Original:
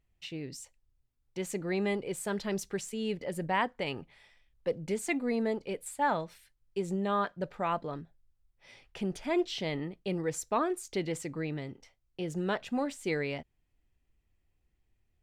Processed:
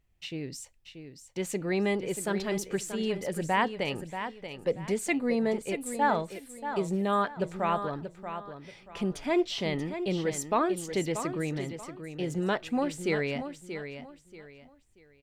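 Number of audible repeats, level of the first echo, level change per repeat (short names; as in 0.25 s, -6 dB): 3, -9.5 dB, -10.5 dB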